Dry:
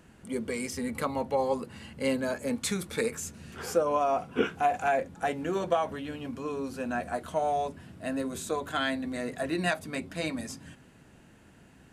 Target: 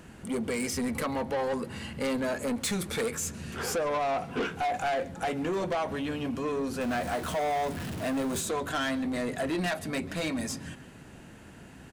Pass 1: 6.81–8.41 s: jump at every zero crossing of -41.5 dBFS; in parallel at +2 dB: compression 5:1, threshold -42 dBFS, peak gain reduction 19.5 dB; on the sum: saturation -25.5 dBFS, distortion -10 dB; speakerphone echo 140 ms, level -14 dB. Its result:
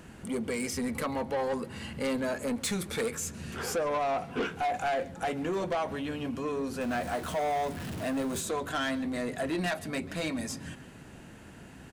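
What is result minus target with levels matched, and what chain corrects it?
compression: peak gain reduction +7.5 dB
6.81–8.41 s: jump at every zero crossing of -41.5 dBFS; in parallel at +2 dB: compression 5:1, threshold -32.5 dBFS, peak gain reduction 11.5 dB; on the sum: saturation -25.5 dBFS, distortion -9 dB; speakerphone echo 140 ms, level -14 dB

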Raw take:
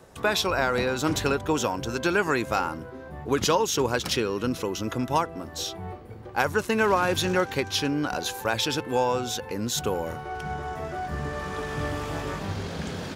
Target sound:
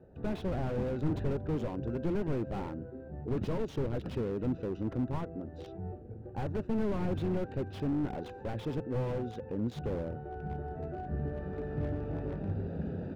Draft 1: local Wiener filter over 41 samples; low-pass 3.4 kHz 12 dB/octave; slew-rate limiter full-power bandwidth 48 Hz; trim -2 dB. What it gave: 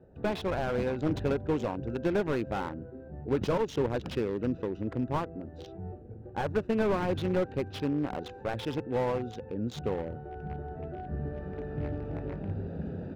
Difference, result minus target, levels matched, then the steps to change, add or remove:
slew-rate limiter: distortion -8 dB
change: slew-rate limiter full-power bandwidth 14 Hz

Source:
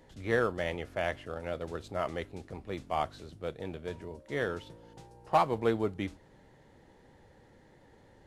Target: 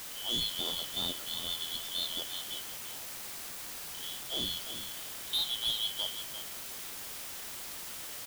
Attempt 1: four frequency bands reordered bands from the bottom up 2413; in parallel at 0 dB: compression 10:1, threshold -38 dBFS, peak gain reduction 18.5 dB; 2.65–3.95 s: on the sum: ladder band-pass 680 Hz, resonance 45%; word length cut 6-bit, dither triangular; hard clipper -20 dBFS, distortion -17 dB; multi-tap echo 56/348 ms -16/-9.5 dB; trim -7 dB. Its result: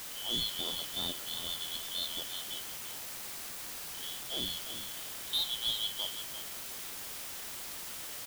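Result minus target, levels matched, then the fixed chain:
compression: peak gain reduction +7 dB
four frequency bands reordered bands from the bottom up 2413; in parallel at 0 dB: compression 10:1, threshold -30 dBFS, peak gain reduction 11 dB; 2.65–3.95 s: on the sum: ladder band-pass 680 Hz, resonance 45%; word length cut 6-bit, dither triangular; hard clipper -20 dBFS, distortion -14 dB; multi-tap echo 56/348 ms -16/-9.5 dB; trim -7 dB

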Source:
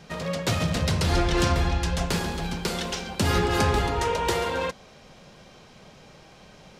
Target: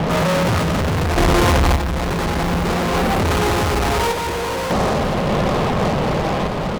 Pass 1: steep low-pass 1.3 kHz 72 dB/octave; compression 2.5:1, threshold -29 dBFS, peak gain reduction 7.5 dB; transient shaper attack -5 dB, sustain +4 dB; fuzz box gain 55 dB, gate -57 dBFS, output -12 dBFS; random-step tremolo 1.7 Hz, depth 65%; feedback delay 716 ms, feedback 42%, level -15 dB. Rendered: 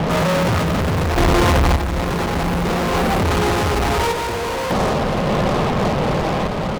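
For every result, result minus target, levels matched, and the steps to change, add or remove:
echo 294 ms early; compression: peak gain reduction +4.5 dB
change: feedback delay 1010 ms, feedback 42%, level -15 dB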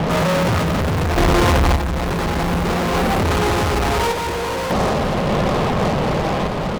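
compression: peak gain reduction +4.5 dB
change: compression 2.5:1, threshold -21.5 dBFS, peak gain reduction 3 dB

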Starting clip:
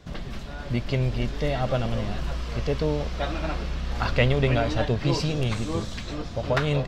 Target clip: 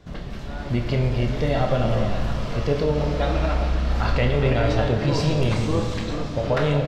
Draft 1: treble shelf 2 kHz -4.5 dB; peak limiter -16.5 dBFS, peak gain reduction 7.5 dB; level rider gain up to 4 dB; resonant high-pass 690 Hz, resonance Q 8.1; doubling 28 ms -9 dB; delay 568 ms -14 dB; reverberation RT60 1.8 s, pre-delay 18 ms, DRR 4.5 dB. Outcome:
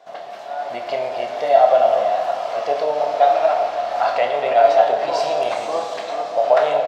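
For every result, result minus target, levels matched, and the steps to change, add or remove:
echo 166 ms late; 500 Hz band +3.5 dB
change: delay 402 ms -14 dB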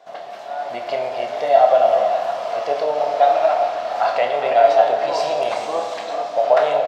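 500 Hz band +3.5 dB
remove: resonant high-pass 690 Hz, resonance Q 8.1

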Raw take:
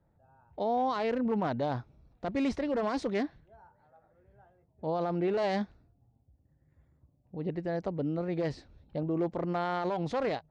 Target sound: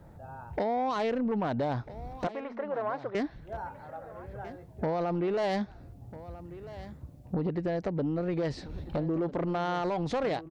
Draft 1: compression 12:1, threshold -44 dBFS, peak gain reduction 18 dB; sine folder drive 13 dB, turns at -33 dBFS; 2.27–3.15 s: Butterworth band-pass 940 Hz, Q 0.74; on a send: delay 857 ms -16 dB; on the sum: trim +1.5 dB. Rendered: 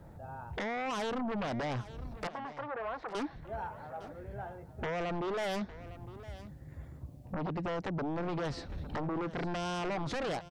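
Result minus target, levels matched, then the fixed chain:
sine folder: distortion +16 dB; echo 439 ms early
compression 12:1, threshold -44 dBFS, peak gain reduction 18 dB; sine folder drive 13 dB, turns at -25.5 dBFS; 2.27–3.15 s: Butterworth band-pass 940 Hz, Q 0.74; on a send: delay 1296 ms -16 dB; on the sum: trim +1.5 dB

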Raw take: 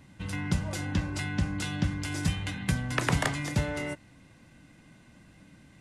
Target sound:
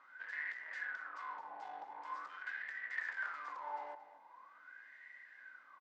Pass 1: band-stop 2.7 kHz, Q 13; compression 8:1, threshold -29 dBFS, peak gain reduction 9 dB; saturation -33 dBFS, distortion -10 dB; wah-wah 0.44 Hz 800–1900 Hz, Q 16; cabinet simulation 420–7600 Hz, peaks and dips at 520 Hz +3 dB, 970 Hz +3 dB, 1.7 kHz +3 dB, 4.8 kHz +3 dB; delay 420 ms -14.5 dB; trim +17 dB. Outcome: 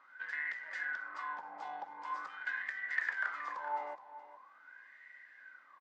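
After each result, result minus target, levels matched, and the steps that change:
echo 195 ms late; saturation: distortion -5 dB
change: delay 225 ms -14.5 dB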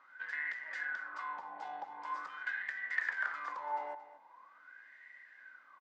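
saturation: distortion -5 dB
change: saturation -41.5 dBFS, distortion -5 dB

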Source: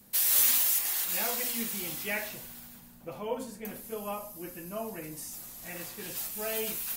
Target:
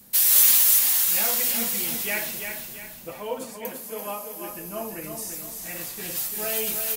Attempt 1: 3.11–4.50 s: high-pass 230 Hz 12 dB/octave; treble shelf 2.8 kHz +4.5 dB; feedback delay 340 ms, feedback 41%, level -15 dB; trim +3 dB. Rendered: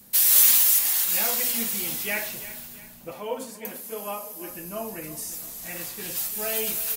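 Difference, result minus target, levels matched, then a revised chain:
echo-to-direct -8.5 dB
3.11–4.50 s: high-pass 230 Hz 12 dB/octave; treble shelf 2.8 kHz +4.5 dB; feedback delay 340 ms, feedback 41%, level -6.5 dB; trim +3 dB

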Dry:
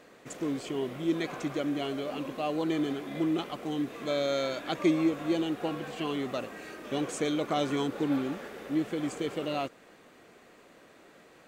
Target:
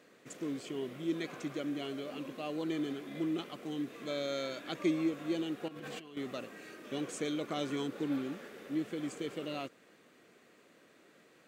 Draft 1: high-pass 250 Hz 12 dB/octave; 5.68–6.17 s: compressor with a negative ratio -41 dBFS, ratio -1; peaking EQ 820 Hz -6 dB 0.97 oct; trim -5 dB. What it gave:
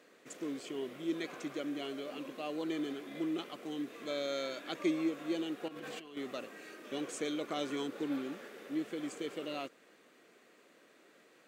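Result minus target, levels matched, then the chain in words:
125 Hz band -6.5 dB
high-pass 120 Hz 12 dB/octave; 5.68–6.17 s: compressor with a negative ratio -41 dBFS, ratio -1; peaking EQ 820 Hz -6 dB 0.97 oct; trim -5 dB

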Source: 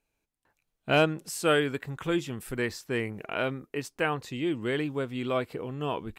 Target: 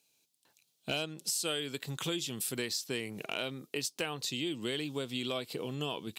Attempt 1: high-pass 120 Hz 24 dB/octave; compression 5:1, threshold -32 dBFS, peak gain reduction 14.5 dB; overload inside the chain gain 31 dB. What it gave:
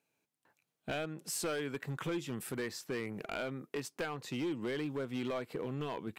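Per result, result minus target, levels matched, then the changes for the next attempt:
overload inside the chain: distortion +15 dB; 4 kHz band -8.0 dB
change: overload inside the chain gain 22 dB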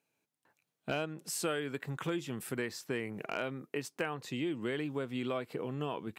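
4 kHz band -8.0 dB
add after high-pass: resonant high shelf 2.6 kHz +13 dB, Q 1.5

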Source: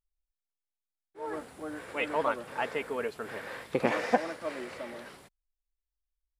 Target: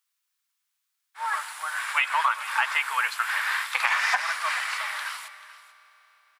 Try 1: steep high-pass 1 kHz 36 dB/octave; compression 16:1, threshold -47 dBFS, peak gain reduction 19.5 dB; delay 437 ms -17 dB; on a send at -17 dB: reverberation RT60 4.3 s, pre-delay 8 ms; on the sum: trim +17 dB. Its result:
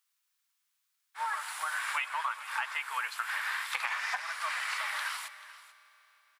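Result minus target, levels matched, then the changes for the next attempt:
compression: peak gain reduction +10.5 dB
change: compression 16:1, threshold -36 dBFS, peak gain reduction 9.5 dB

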